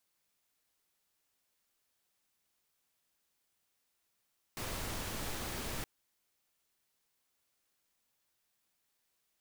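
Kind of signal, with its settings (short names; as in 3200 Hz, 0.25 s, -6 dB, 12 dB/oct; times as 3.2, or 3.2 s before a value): noise pink, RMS -39.5 dBFS 1.27 s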